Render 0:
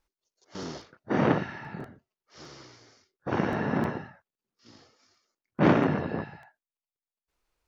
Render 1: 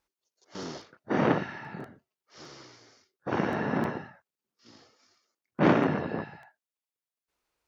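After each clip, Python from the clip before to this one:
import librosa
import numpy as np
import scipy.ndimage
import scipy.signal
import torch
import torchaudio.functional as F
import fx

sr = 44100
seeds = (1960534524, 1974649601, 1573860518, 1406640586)

y = fx.highpass(x, sr, hz=140.0, slope=6)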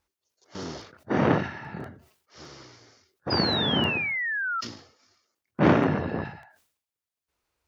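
y = fx.peak_eq(x, sr, hz=79.0, db=11.5, octaves=0.9)
y = fx.spec_paint(y, sr, seeds[0], shape='fall', start_s=3.3, length_s=1.31, low_hz=1300.0, high_hz=5000.0, level_db=-30.0)
y = fx.sustainer(y, sr, db_per_s=100.0)
y = y * 10.0 ** (1.5 / 20.0)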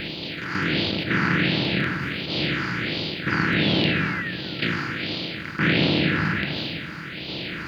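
y = fx.bin_compress(x, sr, power=0.2)
y = fx.phaser_stages(y, sr, stages=4, low_hz=580.0, high_hz=1600.0, hz=1.4, feedback_pct=25)
y = fx.room_shoebox(y, sr, seeds[1], volume_m3=2000.0, walls='mixed', distance_m=0.71)
y = y * 10.0 ** (-5.5 / 20.0)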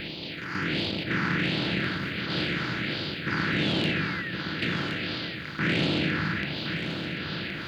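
y = 10.0 ** (-11.5 / 20.0) * np.tanh(x / 10.0 ** (-11.5 / 20.0))
y = y + 10.0 ** (-7.5 / 20.0) * np.pad(y, (int(1070 * sr / 1000.0), 0))[:len(y)]
y = y * 10.0 ** (-4.5 / 20.0)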